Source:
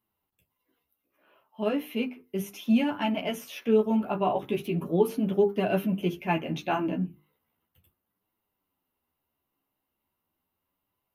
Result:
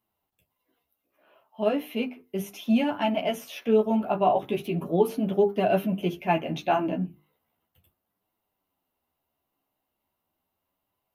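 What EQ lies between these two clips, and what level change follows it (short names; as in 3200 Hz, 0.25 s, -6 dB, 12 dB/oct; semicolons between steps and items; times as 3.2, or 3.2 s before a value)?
bell 680 Hz +7 dB 0.58 oct; bell 3800 Hz +2 dB; 0.0 dB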